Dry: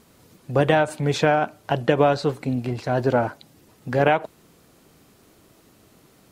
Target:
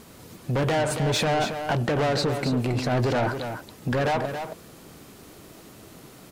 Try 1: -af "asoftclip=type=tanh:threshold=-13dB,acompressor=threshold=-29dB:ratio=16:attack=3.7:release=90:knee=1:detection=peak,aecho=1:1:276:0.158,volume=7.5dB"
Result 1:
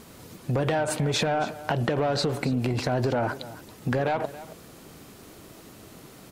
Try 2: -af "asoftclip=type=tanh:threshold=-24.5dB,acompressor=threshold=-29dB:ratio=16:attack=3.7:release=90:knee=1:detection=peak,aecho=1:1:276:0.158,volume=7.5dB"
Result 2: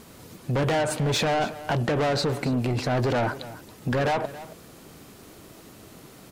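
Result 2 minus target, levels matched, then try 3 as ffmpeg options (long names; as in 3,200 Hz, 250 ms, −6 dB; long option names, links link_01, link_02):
echo-to-direct −8 dB
-af "asoftclip=type=tanh:threshold=-24.5dB,acompressor=threshold=-29dB:ratio=16:attack=3.7:release=90:knee=1:detection=peak,aecho=1:1:276:0.398,volume=7.5dB"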